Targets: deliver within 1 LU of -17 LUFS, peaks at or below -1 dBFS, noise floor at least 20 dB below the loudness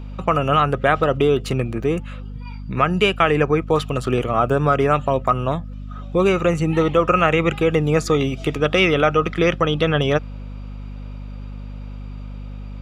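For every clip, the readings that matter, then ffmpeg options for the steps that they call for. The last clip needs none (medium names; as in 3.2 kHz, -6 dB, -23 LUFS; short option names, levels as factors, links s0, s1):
hum 50 Hz; highest harmonic 250 Hz; hum level -29 dBFS; loudness -19.0 LUFS; peak level -1.5 dBFS; loudness target -17.0 LUFS
-> -af "bandreject=f=50:t=h:w=6,bandreject=f=100:t=h:w=6,bandreject=f=150:t=h:w=6,bandreject=f=200:t=h:w=6,bandreject=f=250:t=h:w=6"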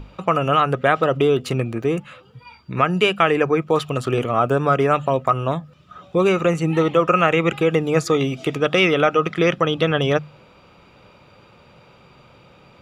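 hum not found; loudness -19.0 LUFS; peak level -1.5 dBFS; loudness target -17.0 LUFS
-> -af "volume=1.26,alimiter=limit=0.891:level=0:latency=1"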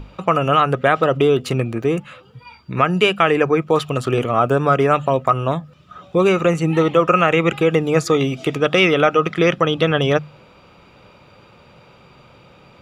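loudness -17.0 LUFS; peak level -1.0 dBFS; noise floor -49 dBFS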